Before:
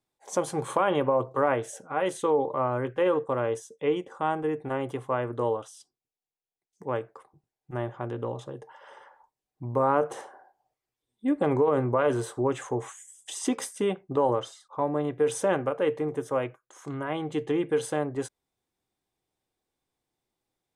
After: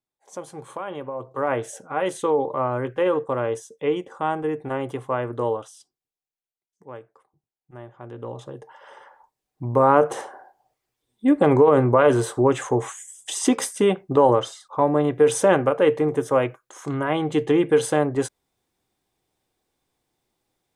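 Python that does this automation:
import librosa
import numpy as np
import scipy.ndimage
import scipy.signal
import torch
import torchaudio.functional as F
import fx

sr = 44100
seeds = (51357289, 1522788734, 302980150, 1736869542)

y = fx.gain(x, sr, db=fx.line((1.14, -8.0), (1.57, 3.0), (5.57, 3.0), (6.87, -9.0), (7.89, -9.0), (8.42, 1.5), (10.03, 8.0)))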